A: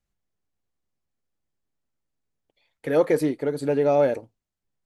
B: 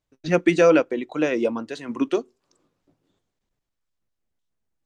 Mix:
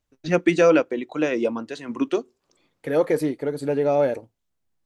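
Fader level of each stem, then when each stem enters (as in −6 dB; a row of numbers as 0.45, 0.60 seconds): −0.5, −0.5 decibels; 0.00, 0.00 seconds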